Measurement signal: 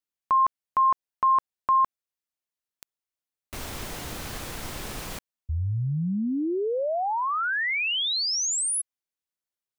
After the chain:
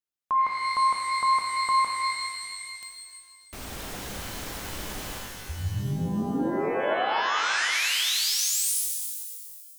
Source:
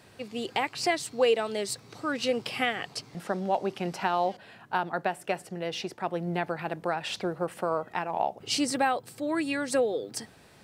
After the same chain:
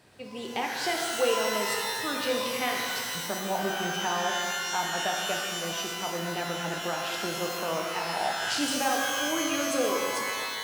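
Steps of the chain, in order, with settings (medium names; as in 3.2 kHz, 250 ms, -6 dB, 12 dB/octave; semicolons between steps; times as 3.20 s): pitch-shifted reverb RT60 2 s, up +12 st, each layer -2 dB, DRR 0 dB; trim -4.5 dB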